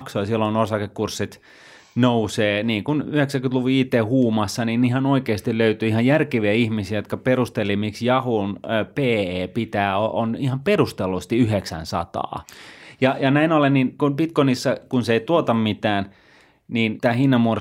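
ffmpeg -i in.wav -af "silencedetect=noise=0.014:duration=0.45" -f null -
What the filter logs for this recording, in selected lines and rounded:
silence_start: 16.08
silence_end: 16.69 | silence_duration: 0.62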